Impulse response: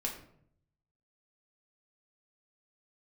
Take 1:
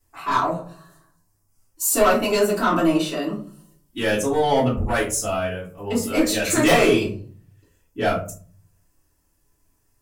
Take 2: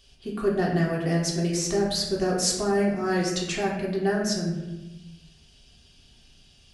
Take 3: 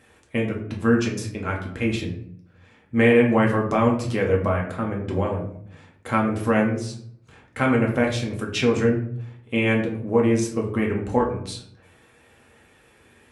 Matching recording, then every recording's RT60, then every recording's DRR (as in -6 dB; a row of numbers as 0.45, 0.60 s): 3; 0.45, 1.1, 0.65 s; -9.5, -5.0, -1.5 dB